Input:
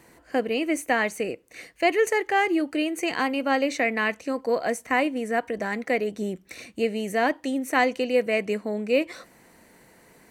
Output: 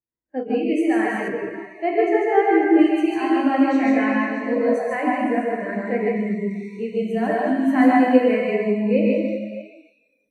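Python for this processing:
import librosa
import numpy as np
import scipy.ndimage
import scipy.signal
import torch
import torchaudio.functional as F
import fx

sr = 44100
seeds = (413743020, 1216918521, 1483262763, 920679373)

p1 = fx.low_shelf(x, sr, hz=110.0, db=11.0)
p2 = p1 + fx.echo_multitap(p1, sr, ms=(138, 153, 616), db=(-5.0, -4.0, -14.0), dry=0)
p3 = fx.rev_plate(p2, sr, seeds[0], rt60_s=3.2, hf_ratio=0.9, predelay_ms=0, drr_db=-3.5)
p4 = fx.noise_reduce_blind(p3, sr, reduce_db=17)
p5 = fx.lowpass(p4, sr, hz=2900.0, slope=6, at=(1.28, 2.79))
y = fx.spectral_expand(p5, sr, expansion=1.5)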